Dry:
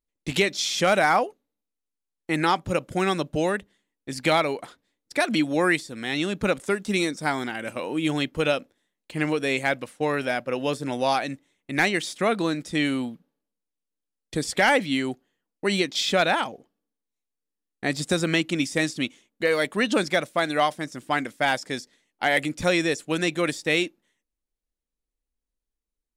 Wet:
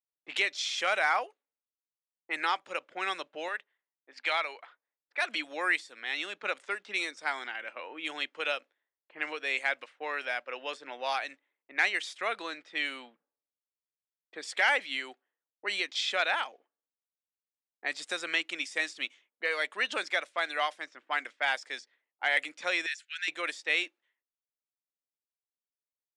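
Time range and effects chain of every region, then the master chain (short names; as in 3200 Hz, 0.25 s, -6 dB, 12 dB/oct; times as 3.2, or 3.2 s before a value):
3.48–5.22 HPF 630 Hz 6 dB/oct + high shelf 8600 Hz -6 dB
22.86–23.28 elliptic high-pass 1500 Hz + high shelf 12000 Hz -10 dB
whole clip: weighting filter ITU-R 468; low-pass opened by the level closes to 710 Hz, open at -20 dBFS; three-band isolator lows -22 dB, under 290 Hz, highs -16 dB, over 2800 Hz; gain -7 dB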